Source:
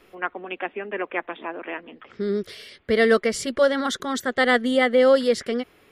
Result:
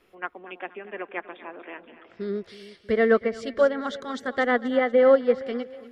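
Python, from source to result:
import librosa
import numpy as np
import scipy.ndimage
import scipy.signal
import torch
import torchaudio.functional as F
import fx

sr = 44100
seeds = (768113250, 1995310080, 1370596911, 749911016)

y = fx.env_lowpass_down(x, sr, base_hz=1800.0, full_db=-17.0)
y = fx.echo_split(y, sr, split_hz=700.0, low_ms=321, high_ms=240, feedback_pct=52, wet_db=-13.5)
y = fx.upward_expand(y, sr, threshold_db=-29.0, expansion=1.5)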